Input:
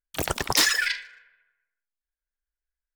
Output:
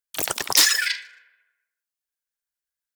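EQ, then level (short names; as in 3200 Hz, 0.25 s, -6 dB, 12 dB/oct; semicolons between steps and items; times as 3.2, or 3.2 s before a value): HPF 340 Hz 6 dB/oct; high shelf 3500 Hz +8.5 dB; -1.0 dB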